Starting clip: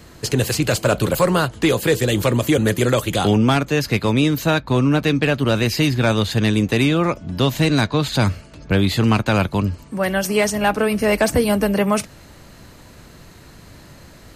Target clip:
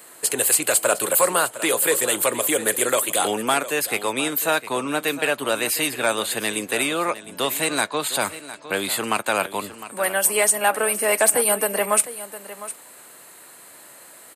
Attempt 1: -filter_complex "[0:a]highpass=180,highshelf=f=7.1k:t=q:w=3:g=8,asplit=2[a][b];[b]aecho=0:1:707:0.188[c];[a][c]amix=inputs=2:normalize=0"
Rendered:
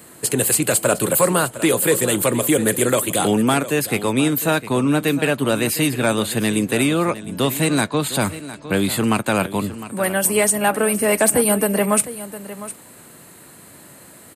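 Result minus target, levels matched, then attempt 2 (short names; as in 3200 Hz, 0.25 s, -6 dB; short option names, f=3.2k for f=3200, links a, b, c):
250 Hz band +9.0 dB
-filter_complex "[0:a]highpass=530,highshelf=f=7.1k:t=q:w=3:g=8,asplit=2[a][b];[b]aecho=0:1:707:0.188[c];[a][c]amix=inputs=2:normalize=0"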